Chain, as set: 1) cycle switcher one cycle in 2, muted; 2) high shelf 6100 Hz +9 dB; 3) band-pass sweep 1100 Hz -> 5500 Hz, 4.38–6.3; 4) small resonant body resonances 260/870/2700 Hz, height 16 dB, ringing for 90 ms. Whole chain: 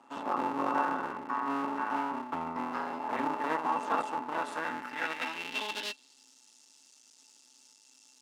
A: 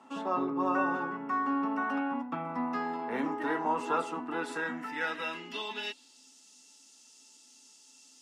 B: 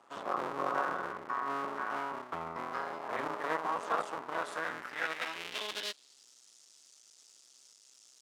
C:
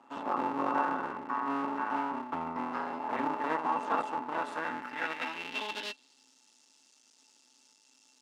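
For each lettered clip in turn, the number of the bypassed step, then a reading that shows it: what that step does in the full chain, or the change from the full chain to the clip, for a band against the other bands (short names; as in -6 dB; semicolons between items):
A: 1, 250 Hz band +4.0 dB; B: 4, 250 Hz band -8.5 dB; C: 2, 4 kHz band -2.0 dB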